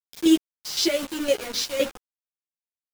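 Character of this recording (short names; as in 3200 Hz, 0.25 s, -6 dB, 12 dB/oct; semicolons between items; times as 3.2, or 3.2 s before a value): chopped level 3.9 Hz, depth 65%, duty 40%; a quantiser's noise floor 6-bit, dither none; a shimmering, thickened sound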